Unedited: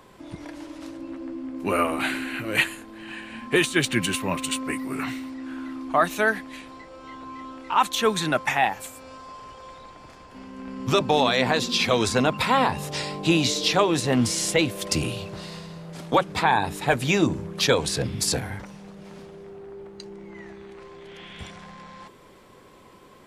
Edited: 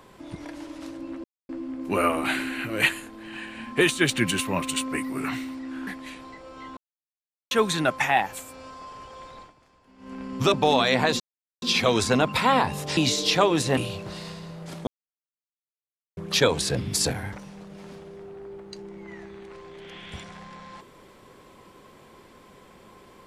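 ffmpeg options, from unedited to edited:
-filter_complex "[0:a]asplit=12[a][b][c][d][e][f][g][h][i][j][k][l];[a]atrim=end=1.24,asetpts=PTS-STARTPTS,afade=t=out:st=1.236:d=0.004:c=hsin,apad=pad_dur=0.25[m];[b]atrim=start=1.24:end=5.622,asetpts=PTS-STARTPTS,afade=t=in:d=0.004:c=hsin[n];[c]atrim=start=6.338:end=7.24,asetpts=PTS-STARTPTS,afade=t=out:st=0.898:d=0.004:c=hsin[o];[d]atrim=start=7.24:end=7.98,asetpts=PTS-STARTPTS,volume=0[p];[e]atrim=start=7.98:end=10.01,asetpts=PTS-STARTPTS,afade=t=in:d=0.004:c=hsin,afade=t=out:st=1.9:d=0.13:silence=0.211349[q];[f]atrim=start=10.01:end=10.44,asetpts=PTS-STARTPTS,volume=-13.5dB[r];[g]atrim=start=10.44:end=11.67,asetpts=PTS-STARTPTS,afade=t=in:d=0.13:silence=0.211349,afade=t=out:st=1.226:d=0.004:c=hsin,apad=pad_dur=0.42[s];[h]atrim=start=11.67:end=13.022,asetpts=PTS-STARTPTS,afade=t=in:d=0.004:c=hsin[t];[i]atrim=start=13.348:end=14.152[u];[j]atrim=start=15.038:end=16.14,asetpts=PTS-STARTPTS,afade=t=out:st=1.098:d=0.004:c=hsin[v];[k]atrim=start=16.14:end=17.44,asetpts=PTS-STARTPTS,volume=0[w];[l]atrim=start=17.44,asetpts=PTS-STARTPTS,afade=t=in:d=0.004:c=hsin[x];[m][n]concat=n=2:v=0:a=1[y];[o][p][q][r][s][t]concat=n=6:v=0:a=1[z];[y][z]acrossfade=d=0.004:c1=hsin:c2=hsin[aa];[aa][u]acrossfade=d=0.004:c1=hsin:c2=hsin[ab];[v][w][x]concat=n=3:v=0:a=1[ac];[ab][ac]acrossfade=d=0.004:c1=hsin:c2=hsin"

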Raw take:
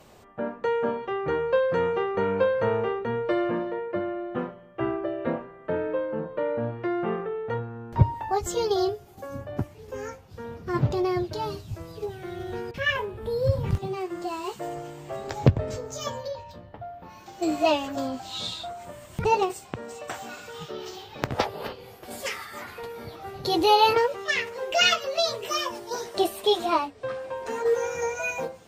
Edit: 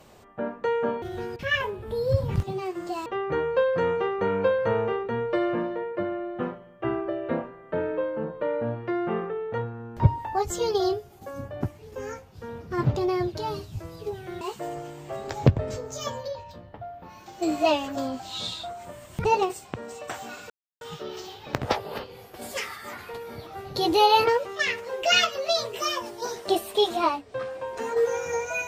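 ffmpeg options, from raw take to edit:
-filter_complex "[0:a]asplit=5[a][b][c][d][e];[a]atrim=end=1.022[f];[b]atrim=start=12.368:end=14.412[g];[c]atrim=start=1.018:end=12.372[h];[d]atrim=start=14.408:end=20.5,asetpts=PTS-STARTPTS,afade=t=out:st=6.088:d=0.004:c=hsin,apad=pad_dur=0.31[i];[e]atrim=start=20.5,asetpts=PTS-STARTPTS,afade=t=in:d=0.004:c=hsin[j];[f][g]acrossfade=d=0.004:c1=hsin:c2=hsin[k];[k][h]acrossfade=d=0.004:c1=hsin:c2=hsin[l];[i][j]concat=n=2:v=0:a=1[m];[l][m]acrossfade=d=0.004:c1=hsin:c2=hsin"

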